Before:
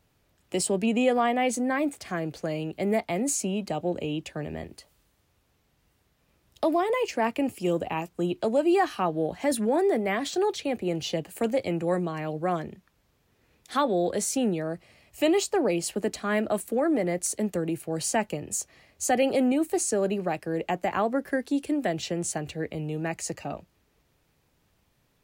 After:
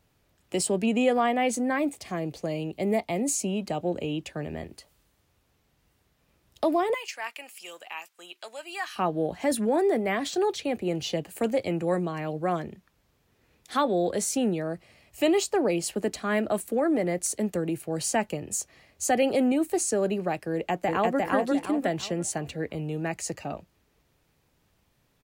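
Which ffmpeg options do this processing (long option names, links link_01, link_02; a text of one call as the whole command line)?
ffmpeg -i in.wav -filter_complex "[0:a]asettb=1/sr,asplit=3[link_01][link_02][link_03];[link_01]atrim=end=1.874[link_04];[link_02]atrim=start=1.87:end=3.48,asetpts=PTS-STARTPTS,afade=type=in:duration=0.004:curve=qsin,afade=type=out:start_time=1.606:duration=0.004:curve=qsin,equalizer=frequency=1500:width=3.3:gain=-9.5[link_05];[link_03]atrim=start=3.476[link_06];[link_04][link_05]acrossfade=duration=0.004:curve1=hsin:curve2=qsin[link_07];[link_07][link_06]acrossfade=duration=0.004:curve1=qsin:curve2=hsin,asettb=1/sr,asplit=3[link_08][link_09][link_10];[link_08]atrim=end=6.944[link_11];[link_09]atrim=start=6.94:end=8.96,asetpts=PTS-STARTPTS,afade=type=in:duration=0.004:curve=qsin,afade=type=out:start_time=2.016:duration=0.004:curve=qsin,highpass=1500[link_12];[link_10]atrim=start=8.956[link_13];[link_11][link_12]acrossfade=duration=0.004:curve1=hsin:curve2=qsin[link_14];[link_14][link_13]acrossfade=duration=0.004:curve1=qsin:curve2=hsin,asplit=2[link_15][link_16];[link_16]afade=type=in:start_time=20.53:duration=0.01,afade=type=out:start_time=21.18:duration=0.01,aecho=0:1:350|700|1050|1400|1750:0.891251|0.311938|0.109178|0.0382124|0.0133743[link_17];[link_15][link_17]amix=inputs=2:normalize=0" out.wav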